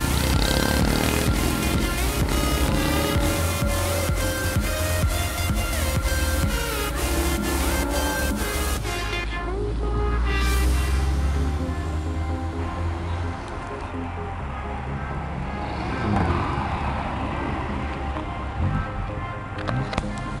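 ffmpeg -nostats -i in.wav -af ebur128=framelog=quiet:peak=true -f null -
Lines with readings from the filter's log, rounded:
Integrated loudness:
  I:         -24.8 LUFS
  Threshold: -34.8 LUFS
Loudness range:
  LRA:         6.4 LU
  Threshold: -45.0 LUFS
  LRA low:   -28.9 LUFS
  LRA high:  -22.5 LUFS
True peak:
  Peak:       -7.3 dBFS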